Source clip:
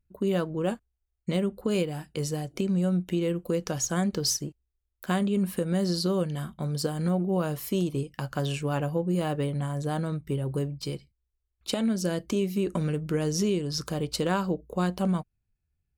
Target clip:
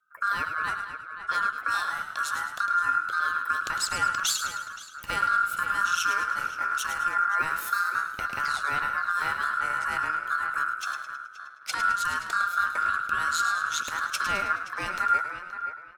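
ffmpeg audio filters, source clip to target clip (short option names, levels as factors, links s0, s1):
-filter_complex "[0:a]acrossover=split=290|1200[s0][s1][s2];[s1]alimiter=level_in=1.68:limit=0.0631:level=0:latency=1,volume=0.596[s3];[s0][s3][s2]amix=inputs=3:normalize=0,asplit=6[s4][s5][s6][s7][s8][s9];[s5]adelay=106,afreqshift=-44,volume=0.355[s10];[s6]adelay=212,afreqshift=-88,volume=0.166[s11];[s7]adelay=318,afreqshift=-132,volume=0.0785[s12];[s8]adelay=424,afreqshift=-176,volume=0.0367[s13];[s9]adelay=530,afreqshift=-220,volume=0.0174[s14];[s4][s10][s11][s12][s13][s14]amix=inputs=6:normalize=0,afreqshift=-180,asplit=2[s15][s16];[s16]adelay=524,lowpass=f=2100:p=1,volume=0.316,asplit=2[s17][s18];[s18]adelay=524,lowpass=f=2100:p=1,volume=0.21,asplit=2[s19][s20];[s20]adelay=524,lowpass=f=2100:p=1,volume=0.21[s21];[s15][s17][s19][s21]amix=inputs=4:normalize=0,aeval=exprs='val(0)*sin(2*PI*1400*n/s)':c=same,volume=1.5"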